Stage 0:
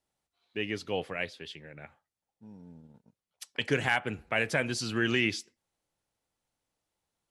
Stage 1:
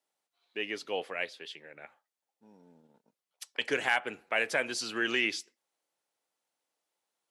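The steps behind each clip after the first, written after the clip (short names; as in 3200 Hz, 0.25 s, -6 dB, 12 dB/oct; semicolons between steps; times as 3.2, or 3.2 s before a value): HPF 380 Hz 12 dB/oct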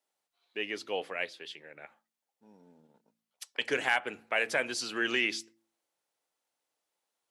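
de-hum 55.9 Hz, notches 6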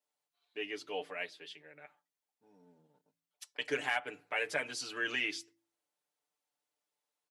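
comb 6.8 ms, depth 88%; gain -7.5 dB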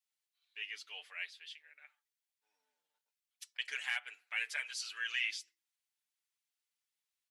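Chebyshev high-pass 2100 Hz, order 2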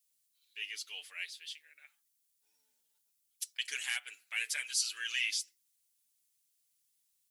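EQ curve 210 Hz 0 dB, 730 Hz -13 dB, 1800 Hz -9 dB, 10000 Hz +8 dB; gain +7.5 dB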